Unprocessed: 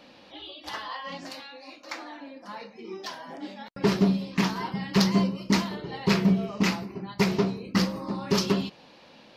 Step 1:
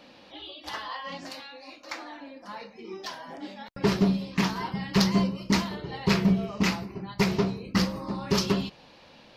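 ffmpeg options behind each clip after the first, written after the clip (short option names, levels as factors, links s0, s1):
-af "asubboost=boost=2.5:cutoff=120"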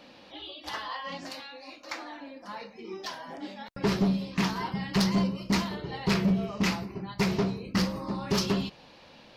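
-af "asoftclip=type=tanh:threshold=0.126"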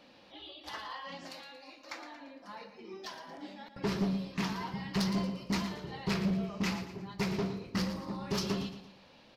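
-af "aecho=1:1:115|230|345|460:0.282|0.113|0.0451|0.018,volume=0.473"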